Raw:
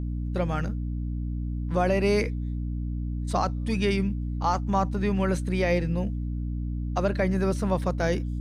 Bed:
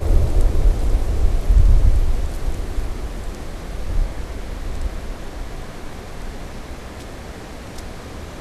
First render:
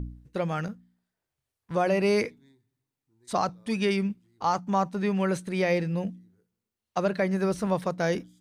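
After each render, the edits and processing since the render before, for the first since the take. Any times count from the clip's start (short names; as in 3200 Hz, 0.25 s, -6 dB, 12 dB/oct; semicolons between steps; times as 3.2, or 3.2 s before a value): de-hum 60 Hz, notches 5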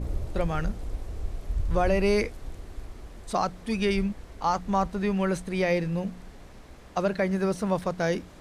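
add bed -15.5 dB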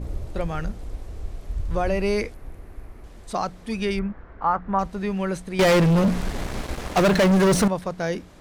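2.34–3.04 band shelf 5000 Hz -9 dB; 3.99–4.79 synth low-pass 1500 Hz, resonance Q 2.2; 5.59–7.68 sample leveller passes 5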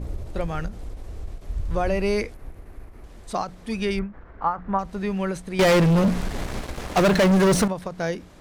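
ending taper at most 170 dB/s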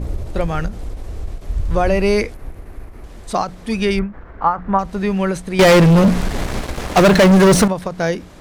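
gain +7.5 dB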